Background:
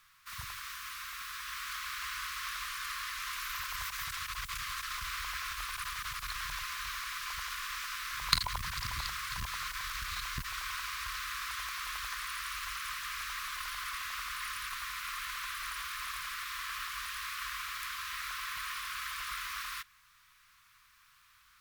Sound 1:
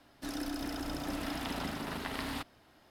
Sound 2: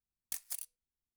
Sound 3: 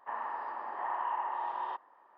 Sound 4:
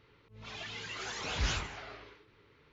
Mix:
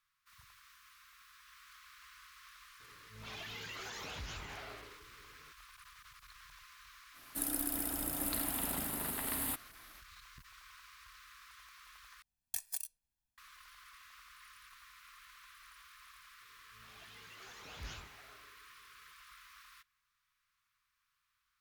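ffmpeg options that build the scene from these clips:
ffmpeg -i bed.wav -i cue0.wav -i cue1.wav -i cue2.wav -i cue3.wav -filter_complex "[4:a]asplit=2[link_01][link_02];[0:a]volume=-18.5dB[link_03];[link_01]acompressor=threshold=-40dB:ratio=6:attack=3.2:release=140:knee=1:detection=peak[link_04];[1:a]aexciter=amount=13.1:drive=4:freq=8100[link_05];[2:a]aecho=1:1:1.2:0.88[link_06];[link_03]asplit=2[link_07][link_08];[link_07]atrim=end=12.224[link_09];[link_06]atrim=end=1.16,asetpts=PTS-STARTPTS,volume=-1.5dB[link_10];[link_08]atrim=start=13.376[link_11];[link_04]atrim=end=2.72,asetpts=PTS-STARTPTS,volume=-1.5dB,afade=type=in:duration=0.004:curve=hsin,afade=type=out:start_time=2.716:duration=0.004:curve=hsin,adelay=2800[link_12];[link_05]atrim=end=2.9,asetpts=PTS-STARTPTS,volume=-4.5dB,afade=type=in:duration=0.05,afade=type=out:start_time=2.85:duration=0.05,adelay=7130[link_13];[link_02]atrim=end=2.72,asetpts=PTS-STARTPTS,volume=-14.5dB,afade=type=in:duration=0.004:curve=hsin,afade=type=out:start_time=2.716:duration=0.004:curve=hsin,adelay=16410[link_14];[link_09][link_10]acrossfade=duration=0.004:curve1=hsin:curve2=hsin[link_15];[link_15][link_11]acrossfade=duration=0.004:curve1=hsin:curve2=hsin[link_16];[link_16][link_12][link_13][link_14]amix=inputs=4:normalize=0" out.wav

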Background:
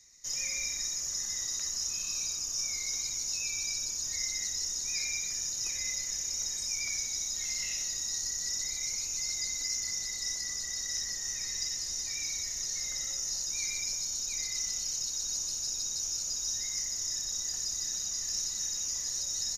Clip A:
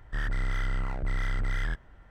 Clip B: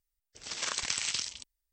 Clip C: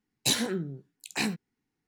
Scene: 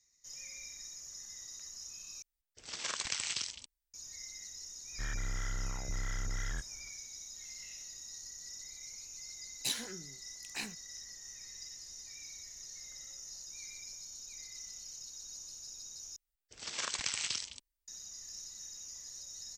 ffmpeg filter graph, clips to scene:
ffmpeg -i bed.wav -i cue0.wav -i cue1.wav -i cue2.wav -filter_complex "[2:a]asplit=2[link_01][link_02];[0:a]volume=-13.5dB[link_03];[3:a]tiltshelf=frequency=860:gain=-5[link_04];[link_03]asplit=3[link_05][link_06][link_07];[link_05]atrim=end=2.224[link_08];[link_01]atrim=end=1.72,asetpts=PTS-STARTPTS,volume=-4dB[link_09];[link_06]atrim=start=3.936:end=16.164[link_10];[link_02]atrim=end=1.72,asetpts=PTS-STARTPTS,volume=-3.5dB[link_11];[link_07]atrim=start=17.876[link_12];[1:a]atrim=end=2.1,asetpts=PTS-STARTPTS,volume=-8dB,afade=type=in:duration=0.1,afade=type=out:start_time=2:duration=0.1,adelay=4860[link_13];[link_04]atrim=end=1.87,asetpts=PTS-STARTPTS,volume=-13.5dB,afade=type=in:duration=0.004:curve=hsin,afade=type=out:start_time=1.866:duration=0.004:curve=hsin,adelay=9390[link_14];[link_08][link_09]acrossfade=duration=0.004:curve1=hsin:curve2=hsin[link_15];[link_15][link_10]acrossfade=duration=0.004:curve1=hsin:curve2=hsin[link_16];[link_16][link_11]acrossfade=duration=0.004:curve1=hsin:curve2=hsin[link_17];[link_17][link_12]acrossfade=duration=0.004:curve1=hsin:curve2=hsin[link_18];[link_18][link_13][link_14]amix=inputs=3:normalize=0" out.wav

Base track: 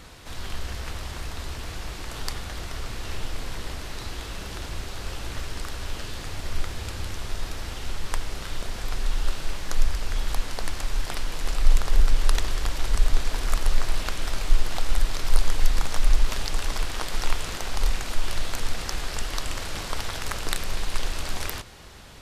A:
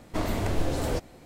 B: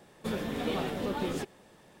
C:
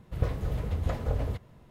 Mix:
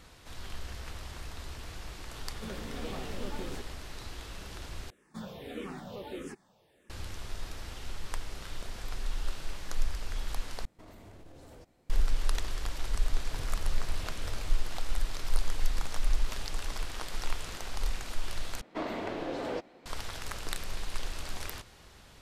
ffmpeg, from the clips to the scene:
ffmpeg -i bed.wav -i cue0.wav -i cue1.wav -i cue2.wav -filter_complex "[2:a]asplit=2[link_01][link_02];[1:a]asplit=2[link_03][link_04];[0:a]volume=-8.5dB[link_05];[link_02]asplit=2[link_06][link_07];[link_07]afreqshift=-1.6[link_08];[link_06][link_08]amix=inputs=2:normalize=1[link_09];[link_03]alimiter=level_in=2.5dB:limit=-24dB:level=0:latency=1:release=53,volume=-2.5dB[link_10];[link_04]acrossover=split=210 4600:gain=0.0891 1 0.112[link_11][link_12][link_13];[link_11][link_12][link_13]amix=inputs=3:normalize=0[link_14];[link_05]asplit=4[link_15][link_16][link_17][link_18];[link_15]atrim=end=4.904[link_19];[link_09]atrim=end=2,asetpts=PTS-STARTPTS,volume=-6dB[link_20];[link_16]atrim=start=6.896:end=10.654[link_21];[link_10]atrim=end=1.25,asetpts=PTS-STARTPTS,volume=-17dB[link_22];[link_17]atrim=start=11.896:end=18.614[link_23];[link_14]atrim=end=1.25,asetpts=PTS-STARTPTS,volume=-3.5dB[link_24];[link_18]atrim=start=19.856[link_25];[link_01]atrim=end=2,asetpts=PTS-STARTPTS,volume=-8.5dB,afade=type=in:duration=0.004:curve=hsin,afade=type=out:start_time=1.996:duration=0.004:curve=hsin,adelay=2170[link_26];[3:a]atrim=end=1.7,asetpts=PTS-STARTPTS,volume=-15dB,afade=type=in:duration=0.004:curve=hsin,afade=type=out:start_time=1.696:duration=0.004:curve=hsin,adelay=13170[link_27];[link_19][link_20]acrossfade=duration=0.004:curve1=hsin:curve2=hsin[link_28];[link_28][link_21]acrossfade=duration=0.004:curve1=hsin:curve2=hsin[link_29];[link_29][link_22]acrossfade=duration=0.004:curve1=hsin:curve2=hsin[link_30];[link_30][link_23]acrossfade=duration=0.004:curve1=hsin:curve2=hsin[link_31];[link_31][link_24]acrossfade=duration=0.004:curve1=hsin:curve2=hsin[link_32];[link_32][link_25]acrossfade=duration=0.004:curve1=hsin:curve2=hsin[link_33];[link_33][link_26][link_27]amix=inputs=3:normalize=0" out.wav

